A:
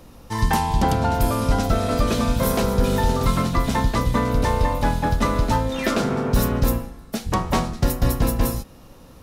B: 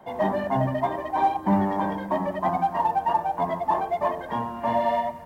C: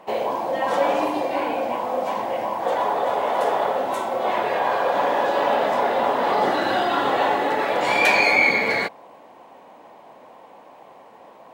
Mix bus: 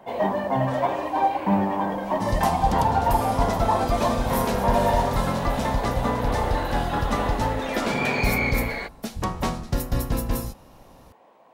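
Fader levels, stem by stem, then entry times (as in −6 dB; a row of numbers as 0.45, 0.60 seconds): −5.0, 0.0, −9.0 decibels; 1.90, 0.00, 0.00 seconds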